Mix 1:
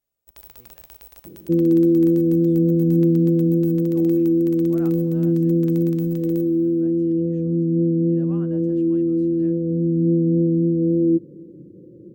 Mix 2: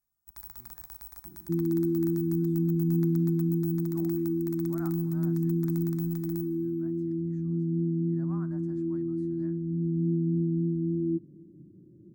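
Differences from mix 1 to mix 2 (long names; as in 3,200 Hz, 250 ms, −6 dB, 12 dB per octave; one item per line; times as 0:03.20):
second sound −5.5 dB
master: add phaser with its sweep stopped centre 1,200 Hz, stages 4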